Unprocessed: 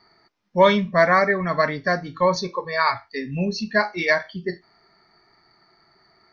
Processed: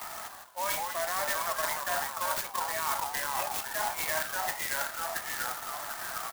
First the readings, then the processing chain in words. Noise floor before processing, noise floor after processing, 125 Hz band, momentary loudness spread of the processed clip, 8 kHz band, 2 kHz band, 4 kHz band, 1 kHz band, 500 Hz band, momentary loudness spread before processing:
-61 dBFS, -46 dBFS, -24.0 dB, 6 LU, no reading, -10.0 dB, -5.0 dB, -8.0 dB, -16.5 dB, 13 LU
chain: gate with hold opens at -49 dBFS; in parallel at +1 dB: upward compressor, threshold -21 dBFS; on the sum: low-pass 2.2 kHz 6 dB/octave; peak limiter -9 dBFS, peak gain reduction 11.5 dB; ever faster or slower copies 127 ms, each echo -2 st, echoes 3, each echo -6 dB; steep high-pass 670 Hz 48 dB/octave; reverse; compression 6:1, threshold -29 dBFS, peak gain reduction 12.5 dB; reverse; delay 679 ms -12 dB; sampling jitter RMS 0.082 ms

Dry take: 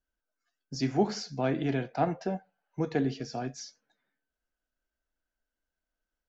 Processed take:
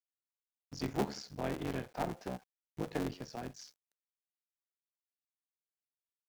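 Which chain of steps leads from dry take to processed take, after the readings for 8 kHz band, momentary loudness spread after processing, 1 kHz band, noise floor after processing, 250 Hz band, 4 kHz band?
no reading, 14 LU, -7.5 dB, under -85 dBFS, -9.0 dB, -7.0 dB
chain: cycle switcher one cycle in 3, muted; bit crusher 10-bit; trim -6.5 dB

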